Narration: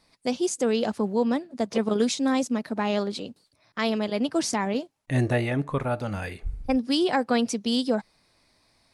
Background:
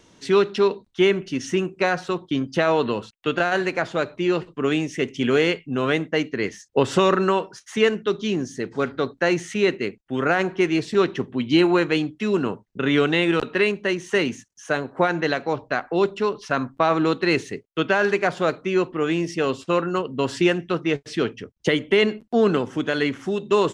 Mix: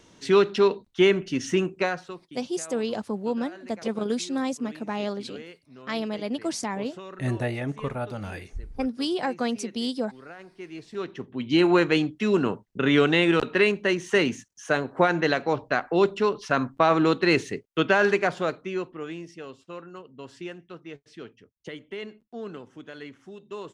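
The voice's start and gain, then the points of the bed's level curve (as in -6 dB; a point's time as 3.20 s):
2.10 s, -4.0 dB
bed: 1.75 s -1 dB
2.41 s -23.5 dB
10.45 s -23.5 dB
11.73 s -0.5 dB
18.09 s -0.5 dB
19.51 s -18.5 dB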